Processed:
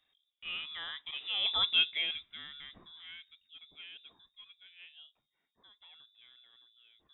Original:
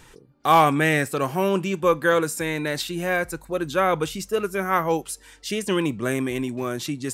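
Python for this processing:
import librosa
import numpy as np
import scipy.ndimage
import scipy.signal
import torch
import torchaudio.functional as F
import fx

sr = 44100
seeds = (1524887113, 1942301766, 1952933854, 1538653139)

y = fx.doppler_pass(x, sr, speed_mps=21, closest_m=2.2, pass_at_s=1.63)
y = fx.freq_invert(y, sr, carrier_hz=3700)
y = F.gain(torch.from_numpy(y), -3.5).numpy()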